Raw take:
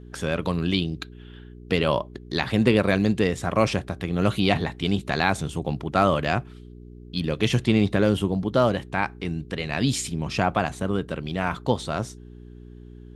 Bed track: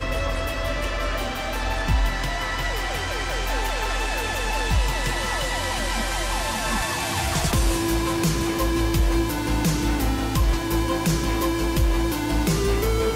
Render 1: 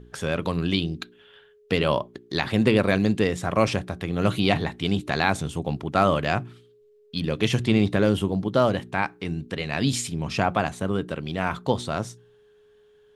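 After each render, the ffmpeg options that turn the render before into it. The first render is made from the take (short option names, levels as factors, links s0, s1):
-af "bandreject=f=60:t=h:w=4,bandreject=f=120:t=h:w=4,bandreject=f=180:t=h:w=4,bandreject=f=240:t=h:w=4,bandreject=f=300:t=h:w=4,bandreject=f=360:t=h:w=4"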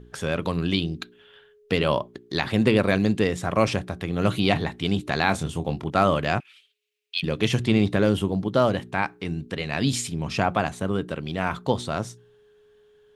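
-filter_complex "[0:a]asettb=1/sr,asplit=3[s0][s1][s2];[s0]atrim=end=5.264[s3];[s1]atrim=start=5.26:end=5.9,asetpts=PTS-STARTPTS,afade=t=in:d=0.004:c=qsin,afade=t=out:st=0.636:d=0.004:c=qsin,asplit=2[s4][s5];[s5]adelay=25,volume=0.355[s6];[s4][s6]amix=inputs=2:normalize=0,atrim=end_sample=28224[s7];[s2]atrim=start=5.896[s8];[s3][s7]acrossfade=d=0.004:c1=hsin:c2=qsin[s9];[s9][s8]acrossfade=d=0.004:c1=qsin:c2=hsin,asettb=1/sr,asplit=3[s10][s11][s12];[s10]atrim=end=6.404[s13];[s11]atrim=start=6.4:end=7.23,asetpts=PTS-STARTPTS,afade=t=in:d=0.004:c=qsin,afade=t=out:st=0.826:d=0.004:c=qsin,highpass=f=2500:t=q:w=3.9[s14];[s12]atrim=start=7.226[s15];[s13][s14]acrossfade=d=0.004:c1=hsin:c2=qsin[s16];[s16][s15]acrossfade=d=0.004:c1=qsin:c2=hsin"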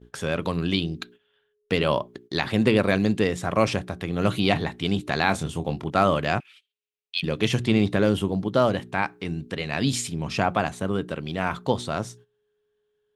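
-af "agate=range=0.158:threshold=0.00447:ratio=16:detection=peak,lowshelf=f=63:g=-5"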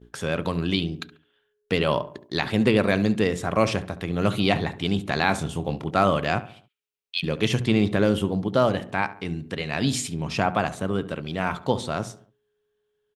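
-filter_complex "[0:a]asplit=2[s0][s1];[s1]adelay=70,lowpass=f=1900:p=1,volume=0.188,asplit=2[s2][s3];[s3]adelay=70,lowpass=f=1900:p=1,volume=0.46,asplit=2[s4][s5];[s5]adelay=70,lowpass=f=1900:p=1,volume=0.46,asplit=2[s6][s7];[s7]adelay=70,lowpass=f=1900:p=1,volume=0.46[s8];[s0][s2][s4][s6][s8]amix=inputs=5:normalize=0"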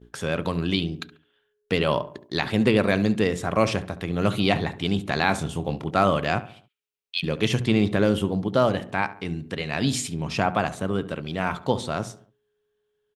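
-af anull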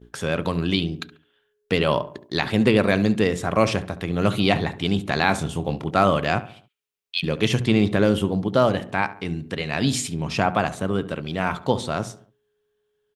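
-af "volume=1.26"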